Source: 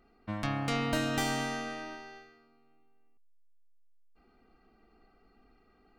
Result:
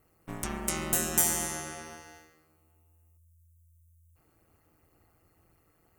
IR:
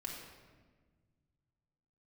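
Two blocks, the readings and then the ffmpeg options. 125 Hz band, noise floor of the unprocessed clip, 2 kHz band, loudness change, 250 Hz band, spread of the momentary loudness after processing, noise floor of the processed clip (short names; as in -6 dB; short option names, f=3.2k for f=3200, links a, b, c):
-5.0 dB, -66 dBFS, -3.0 dB, +4.0 dB, -4.0 dB, 19 LU, -68 dBFS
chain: -af "aexciter=amount=12.1:drive=5.8:freq=6.4k,aeval=exprs='val(0)*sin(2*PI*83*n/s)':c=same,bandreject=f=68.3:t=h:w=4,bandreject=f=136.6:t=h:w=4,bandreject=f=204.9:t=h:w=4,bandreject=f=273.2:t=h:w=4,bandreject=f=341.5:t=h:w=4,bandreject=f=409.8:t=h:w=4,bandreject=f=478.1:t=h:w=4,bandreject=f=546.4:t=h:w=4,bandreject=f=614.7:t=h:w=4,bandreject=f=683:t=h:w=4,bandreject=f=751.3:t=h:w=4,bandreject=f=819.6:t=h:w=4,bandreject=f=887.9:t=h:w=4,bandreject=f=956.2:t=h:w=4,bandreject=f=1.0245k:t=h:w=4,bandreject=f=1.0928k:t=h:w=4,bandreject=f=1.1611k:t=h:w=4,bandreject=f=1.2294k:t=h:w=4,bandreject=f=1.2977k:t=h:w=4,bandreject=f=1.366k:t=h:w=4,bandreject=f=1.4343k:t=h:w=4,bandreject=f=1.5026k:t=h:w=4,bandreject=f=1.5709k:t=h:w=4,bandreject=f=1.6392k:t=h:w=4,bandreject=f=1.7075k:t=h:w=4,bandreject=f=1.7758k:t=h:w=4,bandreject=f=1.8441k:t=h:w=4,bandreject=f=1.9124k:t=h:w=4,bandreject=f=1.9807k:t=h:w=4,bandreject=f=2.049k:t=h:w=4,bandreject=f=2.1173k:t=h:w=4"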